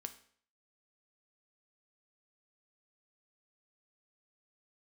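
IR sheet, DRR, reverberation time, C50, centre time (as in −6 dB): 7.5 dB, 0.55 s, 13.5 dB, 7 ms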